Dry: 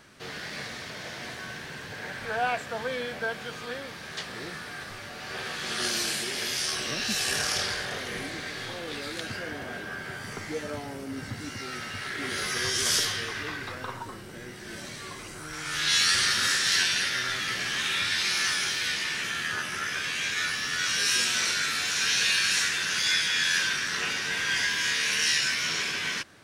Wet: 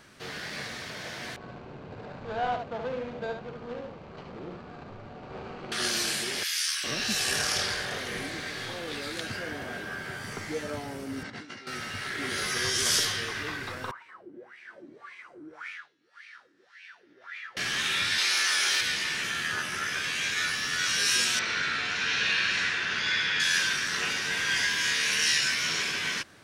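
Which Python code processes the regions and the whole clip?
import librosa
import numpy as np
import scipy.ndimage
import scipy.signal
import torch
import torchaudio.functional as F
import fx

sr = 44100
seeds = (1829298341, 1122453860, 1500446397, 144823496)

y = fx.chain(x, sr, fx.median_filter(points=25),
    fx.gaussian_blur(sigma=1.8),
    fx.echo_single(ms=71, db=-5.5), at=(1.36, 5.72))
y = fx.chain(y, sr, fx.highpass(hz=1400.0, slope=24),
    fx.high_shelf(hz=11000.0, db=5.5), at=(6.43, 6.84))
y = fx.chain(y, sr, fx.bandpass_edges(low_hz=200.0, high_hz=4500.0),
    fx.over_compress(threshold_db=-42.0, ratio=-0.5), at=(11.23, 11.67))
y = fx.chain(y, sr, fx.over_compress(threshold_db=-34.0, ratio=-1.0),
    fx.wah_lfo(hz=1.8, low_hz=290.0, high_hz=2400.0, q=8.2), at=(13.91, 17.57))
y = fx.chain(y, sr, fx.highpass(hz=410.0, slope=12),
    fx.env_flatten(amount_pct=100), at=(18.18, 18.81))
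y = fx.chain(y, sr, fx.lowpass(hz=3100.0, slope=12),
    fx.echo_single(ms=104, db=-5.0), at=(21.39, 23.4))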